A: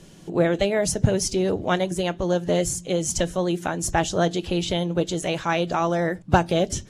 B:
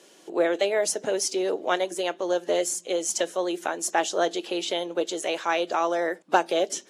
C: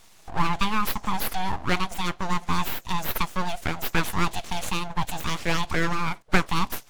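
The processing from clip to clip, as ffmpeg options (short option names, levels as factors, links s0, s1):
-af "highpass=f=340:w=0.5412,highpass=f=340:w=1.3066,volume=0.891"
-af "aeval=exprs='abs(val(0))':c=same,volume=1.33"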